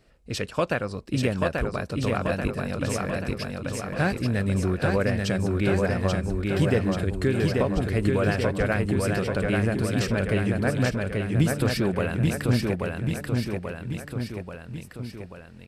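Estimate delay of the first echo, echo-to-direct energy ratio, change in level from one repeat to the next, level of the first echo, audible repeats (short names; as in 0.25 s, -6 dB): 0.835 s, -1.0 dB, -4.5 dB, -3.0 dB, 4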